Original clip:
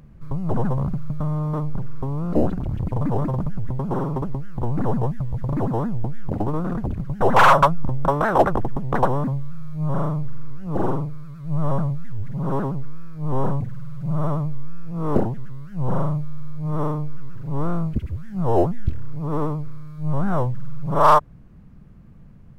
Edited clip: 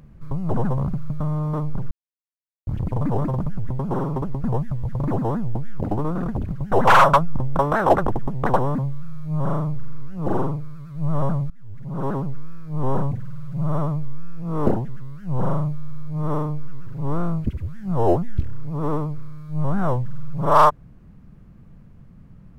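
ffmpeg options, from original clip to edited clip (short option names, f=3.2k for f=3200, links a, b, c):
-filter_complex "[0:a]asplit=5[a][b][c][d][e];[a]atrim=end=1.91,asetpts=PTS-STARTPTS,afade=t=out:st=1.906:d=0.004:c=hsin[f];[b]atrim=start=1.91:end=2.67,asetpts=PTS-STARTPTS,volume=0[g];[c]atrim=start=2.67:end=4.442,asetpts=PTS-STARTPTS,afade=t=in:d=0.004:c=hsin[h];[d]atrim=start=4.928:end=11.99,asetpts=PTS-STARTPTS,afade=t=out:st=7.058:d=0.004:c=hsin:silence=0.0794328[i];[e]atrim=start=11.99,asetpts=PTS-STARTPTS,afade=t=in:d=0.7:silence=0.0794328[j];[f][g][h]concat=n=3:v=0:a=1[k];[i][j]concat=n=2:v=0:a=1[l];[k][l]acrossfade=d=0.004:c1=hsin:c2=hsin"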